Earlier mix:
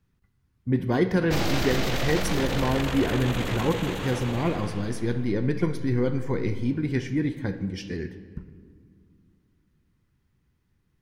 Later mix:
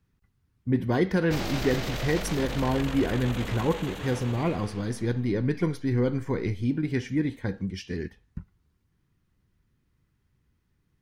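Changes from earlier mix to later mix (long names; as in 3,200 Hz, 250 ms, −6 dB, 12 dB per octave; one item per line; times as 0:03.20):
background −4.0 dB
reverb: off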